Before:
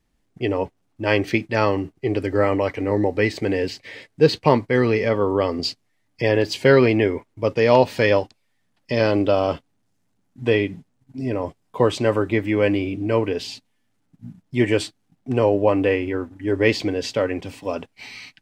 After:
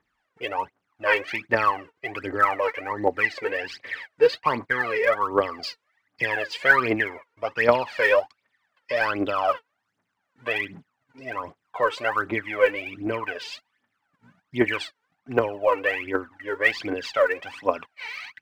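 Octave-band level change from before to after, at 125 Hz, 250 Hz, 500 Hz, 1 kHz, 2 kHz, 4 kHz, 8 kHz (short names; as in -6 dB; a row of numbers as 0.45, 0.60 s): -16.0 dB, -11.0 dB, -5.5 dB, +1.0 dB, +3.5 dB, -4.5 dB, n/a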